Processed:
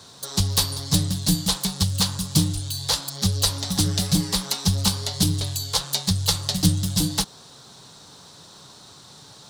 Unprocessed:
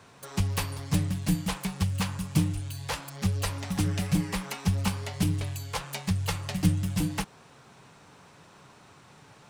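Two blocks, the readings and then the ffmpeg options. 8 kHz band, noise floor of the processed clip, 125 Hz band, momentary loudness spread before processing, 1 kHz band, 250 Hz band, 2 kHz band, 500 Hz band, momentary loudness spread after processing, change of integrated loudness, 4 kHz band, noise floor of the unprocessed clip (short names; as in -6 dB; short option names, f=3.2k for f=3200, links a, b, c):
+13.5 dB, -47 dBFS, +4.0 dB, 7 LU, +3.0 dB, +4.0 dB, 0.0 dB, +4.0 dB, 4 LU, +7.5 dB, +15.0 dB, -55 dBFS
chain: -af "highshelf=f=3.1k:t=q:w=3:g=8,volume=4dB"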